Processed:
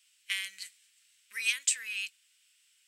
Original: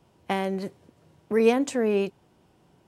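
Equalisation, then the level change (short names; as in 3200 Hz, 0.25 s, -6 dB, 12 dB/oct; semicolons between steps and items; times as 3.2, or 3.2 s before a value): inverse Chebyshev high-pass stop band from 840 Hz, stop band 50 dB; bell 8000 Hz +10 dB 0.26 oct; +5.5 dB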